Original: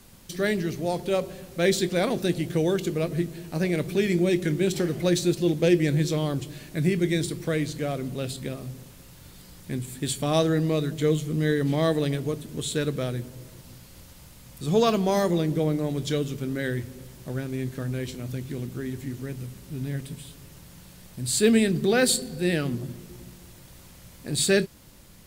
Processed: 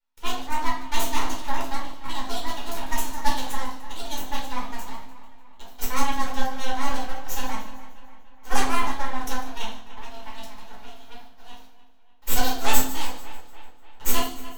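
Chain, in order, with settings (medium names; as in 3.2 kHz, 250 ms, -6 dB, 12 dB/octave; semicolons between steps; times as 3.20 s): local Wiener filter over 9 samples; gate -38 dBFS, range -27 dB; steep high-pass 420 Hz 96 dB/octave; treble shelf 7.5 kHz +9 dB; half-wave rectifier; AM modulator 150 Hz, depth 50%; two-band feedback delay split 1.9 kHz, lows 510 ms, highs 257 ms, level -14.5 dB; reverberation RT60 0.90 s, pre-delay 4 ms, DRR -5.5 dB; speed mistake 45 rpm record played at 78 rpm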